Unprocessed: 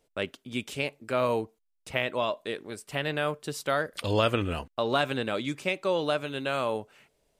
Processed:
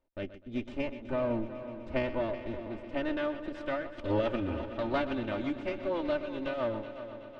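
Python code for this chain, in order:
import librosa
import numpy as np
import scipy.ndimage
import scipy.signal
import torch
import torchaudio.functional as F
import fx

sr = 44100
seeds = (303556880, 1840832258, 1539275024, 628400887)

y = fx.lower_of_two(x, sr, delay_ms=3.3)
y = fx.tilt_eq(y, sr, slope=-1.5, at=(0.72, 3.17))
y = fx.rotary_switch(y, sr, hz=0.9, then_hz=6.0, switch_at_s=3.24)
y = fx.spacing_loss(y, sr, db_at_10k=34)
y = fx.echo_heads(y, sr, ms=125, heads='first and third', feedback_pct=67, wet_db=-13.5)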